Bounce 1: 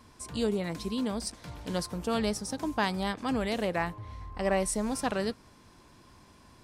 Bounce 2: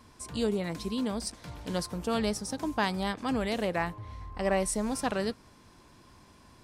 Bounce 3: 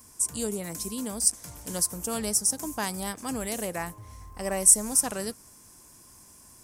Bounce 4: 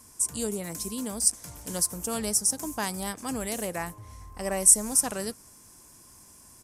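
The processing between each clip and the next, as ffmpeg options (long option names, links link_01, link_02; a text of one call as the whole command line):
ffmpeg -i in.wav -af anull out.wav
ffmpeg -i in.wav -af "aexciter=amount=10.4:drive=4.8:freq=5800,volume=-3dB" out.wav
ffmpeg -i in.wav -af "aresample=32000,aresample=44100" out.wav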